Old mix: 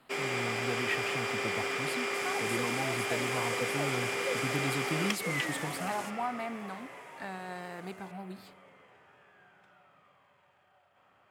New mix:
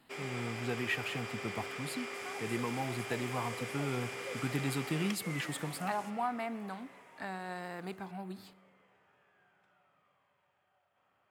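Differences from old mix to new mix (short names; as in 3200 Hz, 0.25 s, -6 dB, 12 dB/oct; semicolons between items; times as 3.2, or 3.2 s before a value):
first sound -9.0 dB; second sound -9.0 dB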